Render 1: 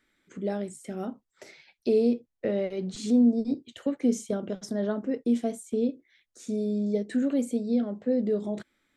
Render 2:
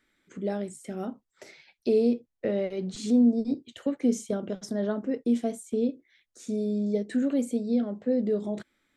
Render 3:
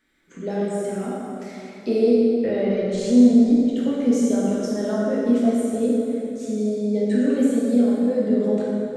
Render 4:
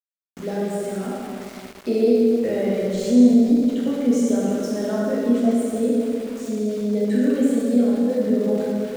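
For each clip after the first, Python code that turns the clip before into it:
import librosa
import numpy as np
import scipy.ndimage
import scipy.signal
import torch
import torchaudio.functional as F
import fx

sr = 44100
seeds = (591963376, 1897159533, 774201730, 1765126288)

y1 = x
y2 = fx.rev_plate(y1, sr, seeds[0], rt60_s=3.1, hf_ratio=0.6, predelay_ms=0, drr_db=-7.0)
y3 = np.where(np.abs(y2) >= 10.0 ** (-36.0 / 20.0), y2, 0.0)
y3 = fx.room_flutter(y3, sr, wall_m=11.7, rt60_s=0.32)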